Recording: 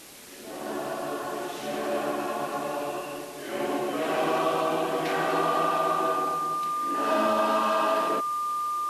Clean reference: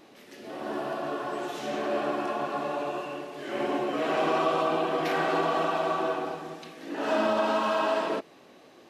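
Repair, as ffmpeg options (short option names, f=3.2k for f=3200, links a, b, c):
-af "bandreject=f=1.2k:w=30,afwtdn=0.005"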